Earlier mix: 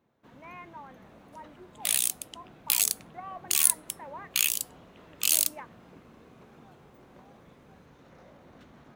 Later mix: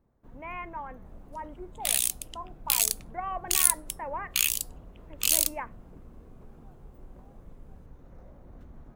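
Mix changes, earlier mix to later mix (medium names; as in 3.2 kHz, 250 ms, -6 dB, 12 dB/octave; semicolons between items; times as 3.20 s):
speech +7.5 dB; first sound: add peaking EQ 3.4 kHz -13.5 dB 2.6 oct; master: remove high-pass 140 Hz 12 dB/octave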